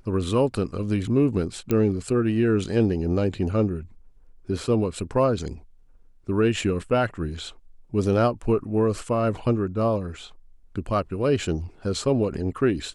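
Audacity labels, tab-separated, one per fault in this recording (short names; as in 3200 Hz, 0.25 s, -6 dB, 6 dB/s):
1.710000	1.710000	pop -11 dBFS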